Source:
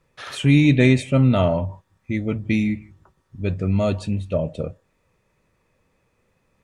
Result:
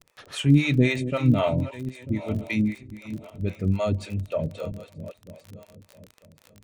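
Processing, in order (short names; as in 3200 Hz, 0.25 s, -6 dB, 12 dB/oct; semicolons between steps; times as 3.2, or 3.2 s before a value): regenerating reverse delay 0.472 s, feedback 52%, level -12 dB; harmonic tremolo 3.8 Hz, depth 100%, crossover 470 Hz; crackle 28/s -33 dBFS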